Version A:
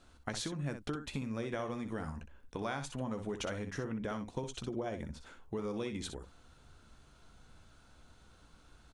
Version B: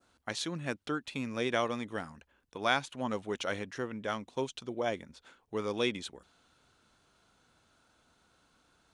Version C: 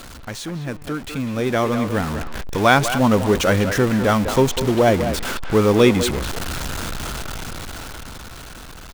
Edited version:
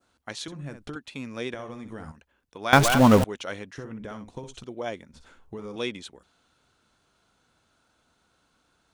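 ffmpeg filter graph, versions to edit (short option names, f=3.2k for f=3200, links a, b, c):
-filter_complex "[0:a]asplit=4[a][b][c][d];[1:a]asplit=6[e][f][g][h][i][j];[e]atrim=end=0.482[k];[a]atrim=start=0.478:end=0.962[l];[f]atrim=start=0.958:end=1.542[m];[b]atrim=start=1.538:end=2.122[n];[g]atrim=start=2.118:end=2.732[o];[2:a]atrim=start=2.728:end=3.242[p];[h]atrim=start=3.238:end=3.782[q];[c]atrim=start=3.778:end=4.642[r];[i]atrim=start=4.638:end=5.142[s];[d]atrim=start=5.138:end=5.762[t];[j]atrim=start=5.758[u];[k][l]acrossfade=d=0.004:c1=hsin:c2=hsin[v];[v][m]acrossfade=d=0.004:c1=hsin:c2=hsin[w];[w][n]acrossfade=d=0.004:c1=hsin:c2=hsin[x];[x][o]acrossfade=d=0.004:c1=hsin:c2=hsin[y];[y][p]acrossfade=d=0.004:c1=hsin:c2=hsin[z];[z][q]acrossfade=d=0.004:c1=hsin:c2=hsin[aa];[aa][r]acrossfade=d=0.004:c1=hsin:c2=hsin[ab];[ab][s]acrossfade=d=0.004:c1=hsin:c2=hsin[ac];[ac][t]acrossfade=d=0.004:c1=hsin:c2=hsin[ad];[ad][u]acrossfade=d=0.004:c1=hsin:c2=hsin"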